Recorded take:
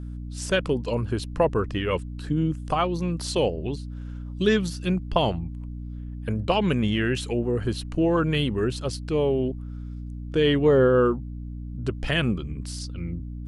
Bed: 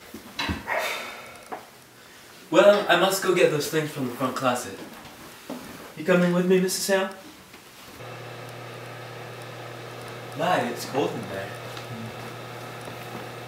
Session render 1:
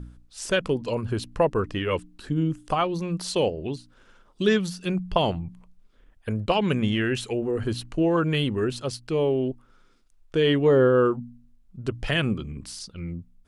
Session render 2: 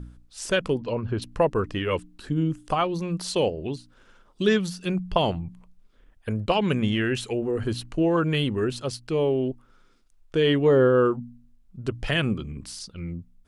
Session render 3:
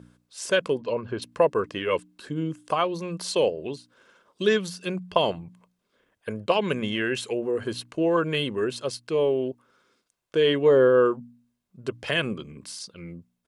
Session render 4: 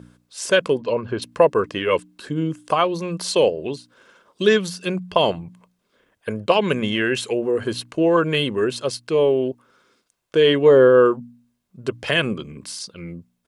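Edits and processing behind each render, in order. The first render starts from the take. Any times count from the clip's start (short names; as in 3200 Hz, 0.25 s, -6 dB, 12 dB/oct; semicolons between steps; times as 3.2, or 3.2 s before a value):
de-hum 60 Hz, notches 5
0.8–1.22 air absorption 190 m
HPF 210 Hz 12 dB/oct; comb 1.9 ms, depth 31%
gain +5.5 dB; limiter -2 dBFS, peak gain reduction 2.5 dB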